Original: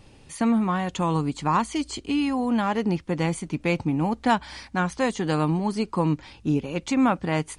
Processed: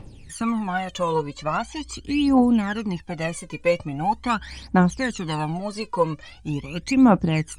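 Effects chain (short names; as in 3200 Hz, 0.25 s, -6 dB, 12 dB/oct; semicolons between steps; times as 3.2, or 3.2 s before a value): phaser 0.42 Hz, delay 2.1 ms, feedback 79%; 1.15–1.89 air absorption 63 m; gain -2.5 dB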